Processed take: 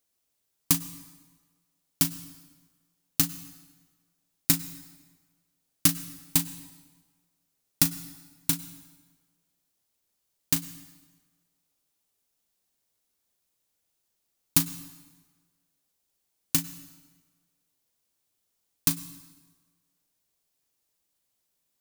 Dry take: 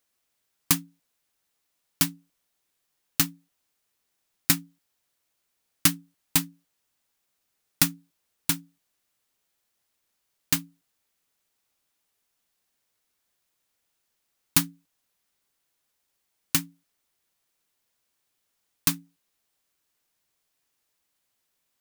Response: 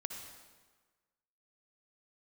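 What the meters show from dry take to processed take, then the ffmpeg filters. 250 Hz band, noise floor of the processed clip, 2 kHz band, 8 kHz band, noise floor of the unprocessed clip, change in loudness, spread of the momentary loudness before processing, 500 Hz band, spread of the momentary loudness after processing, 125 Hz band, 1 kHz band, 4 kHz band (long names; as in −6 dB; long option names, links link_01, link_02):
−0.5 dB, −78 dBFS, −6.0 dB, −0.5 dB, −78 dBFS, −1.0 dB, 7 LU, −1.0 dB, 19 LU, 0.0 dB, −5.0 dB, −2.5 dB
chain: -filter_complex "[0:a]equalizer=frequency=1700:width_type=o:width=2.3:gain=-7,asplit=2[link_01][link_02];[1:a]atrim=start_sample=2205,adelay=37[link_03];[link_02][link_03]afir=irnorm=-1:irlink=0,volume=-9.5dB[link_04];[link_01][link_04]amix=inputs=2:normalize=0"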